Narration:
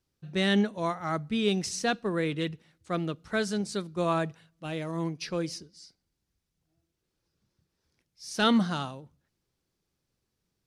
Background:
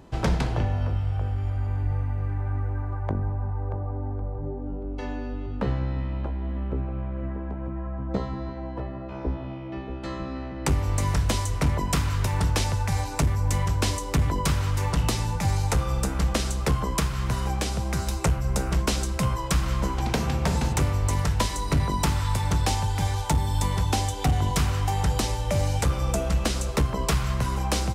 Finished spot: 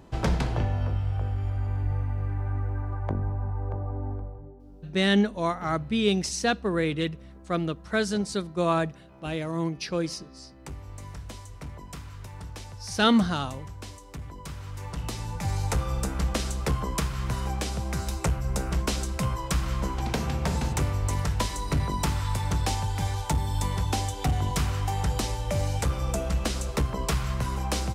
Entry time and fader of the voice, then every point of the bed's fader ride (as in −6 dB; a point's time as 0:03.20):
4.60 s, +3.0 dB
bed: 0:04.13 −1.5 dB
0:04.56 −16.5 dB
0:14.36 −16.5 dB
0:15.65 −3 dB